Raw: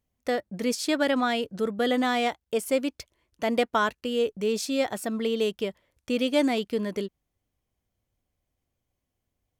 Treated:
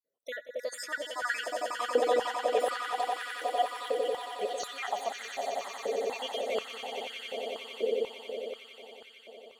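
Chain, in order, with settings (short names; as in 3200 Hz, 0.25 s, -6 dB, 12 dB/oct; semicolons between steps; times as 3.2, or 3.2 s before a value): random spectral dropouts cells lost 74%; swelling echo 91 ms, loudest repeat 8, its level -9 dB; stepped high-pass 4.1 Hz 490–1500 Hz; gain -4.5 dB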